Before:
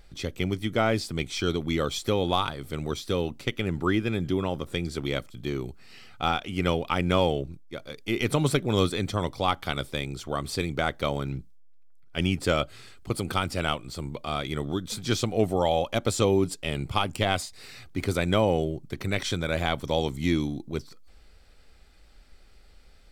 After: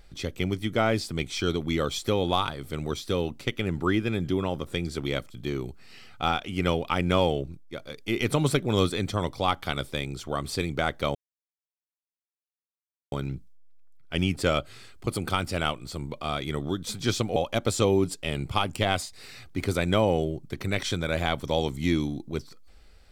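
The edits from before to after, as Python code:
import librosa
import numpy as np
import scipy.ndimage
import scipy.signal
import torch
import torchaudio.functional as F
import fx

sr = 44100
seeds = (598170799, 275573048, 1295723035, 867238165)

y = fx.edit(x, sr, fx.insert_silence(at_s=11.15, length_s=1.97),
    fx.cut(start_s=15.39, length_s=0.37), tone=tone)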